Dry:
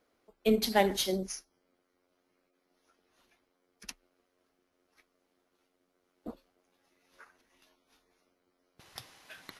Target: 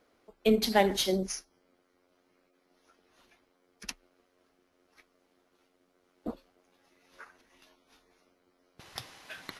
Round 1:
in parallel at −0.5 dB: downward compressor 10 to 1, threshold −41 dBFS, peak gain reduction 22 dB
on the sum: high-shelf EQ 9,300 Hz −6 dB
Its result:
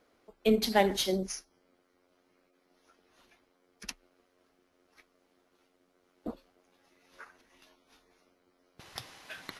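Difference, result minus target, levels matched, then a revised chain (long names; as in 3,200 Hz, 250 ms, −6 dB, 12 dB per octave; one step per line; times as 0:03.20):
downward compressor: peak gain reduction +6.5 dB
in parallel at −0.5 dB: downward compressor 10 to 1, threshold −34 dBFS, peak gain reduction 16 dB
on the sum: high-shelf EQ 9,300 Hz −6 dB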